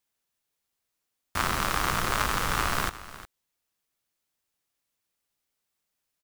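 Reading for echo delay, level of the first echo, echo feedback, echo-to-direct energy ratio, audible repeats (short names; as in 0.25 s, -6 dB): 0.359 s, -16.0 dB, no steady repeat, -16.0 dB, 1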